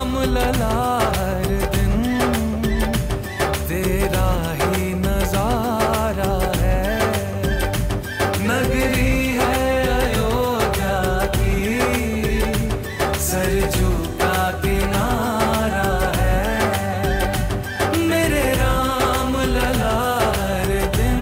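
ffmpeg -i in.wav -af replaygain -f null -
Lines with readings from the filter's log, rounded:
track_gain = +2.9 dB
track_peak = 0.289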